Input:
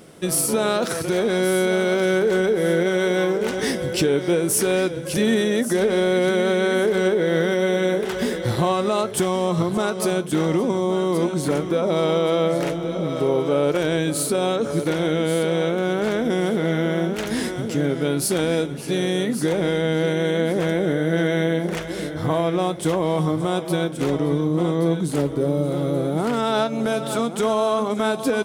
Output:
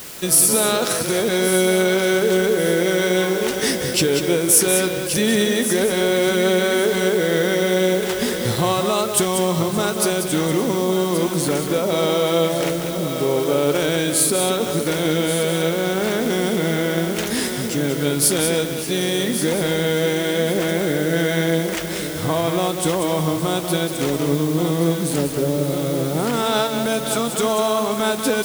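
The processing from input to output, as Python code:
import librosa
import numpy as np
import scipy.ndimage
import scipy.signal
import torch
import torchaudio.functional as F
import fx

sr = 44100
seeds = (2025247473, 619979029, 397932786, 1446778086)

p1 = fx.high_shelf(x, sr, hz=2800.0, db=8.5)
p2 = fx.quant_dither(p1, sr, seeds[0], bits=6, dither='triangular')
y = p2 + fx.echo_single(p2, sr, ms=189, db=-7.5, dry=0)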